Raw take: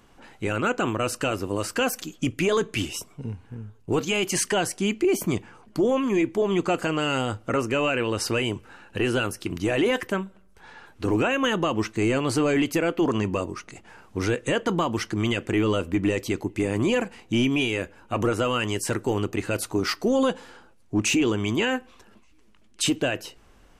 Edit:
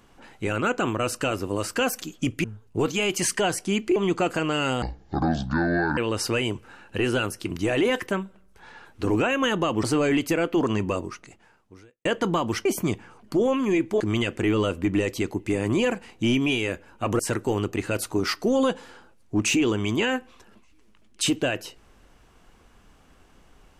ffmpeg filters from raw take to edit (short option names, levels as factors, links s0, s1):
-filter_complex "[0:a]asplit=10[s0][s1][s2][s3][s4][s5][s6][s7][s8][s9];[s0]atrim=end=2.442[s10];[s1]atrim=start=3.568:end=5.092[s11];[s2]atrim=start=6.438:end=7.304[s12];[s3]atrim=start=7.3:end=7.98,asetpts=PTS-STARTPTS,asetrate=26019,aresample=44100,atrim=end_sample=50827,asetpts=PTS-STARTPTS[s13];[s4]atrim=start=7.976:end=11.842[s14];[s5]atrim=start=12.278:end=14.5,asetpts=PTS-STARTPTS,afade=t=out:st=1.212:d=1.01:c=qua[s15];[s6]atrim=start=14.5:end=15.102,asetpts=PTS-STARTPTS,afade=t=in:d=0.004:c=hsin[s16];[s7]atrim=start=5.088:end=6.442[s17];[s8]atrim=start=15.098:end=18.292[s18];[s9]atrim=start=18.788[s19];[s10][s11]acrossfade=d=0.004:c1=hsin:c2=hsin[s20];[s20][s12]acrossfade=d=0.004:c1=hsin:c2=hsin[s21];[s21][s13]acrossfade=d=0.004:c1=hsin:c2=hsin[s22];[s22][s14]acrossfade=d=0.004:c1=hsin:c2=hsin[s23];[s15][s16]concat=n=2:v=0:a=1[s24];[s23][s24]acrossfade=d=0.004:c1=hsin:c2=hsin[s25];[s25][s17]acrossfade=d=0.004:c1=hsin:c2=hsin[s26];[s26][s18]acrossfade=d=0.004:c1=hsin:c2=hsin[s27];[s27][s19]acrossfade=d=0.004:c1=hsin:c2=hsin"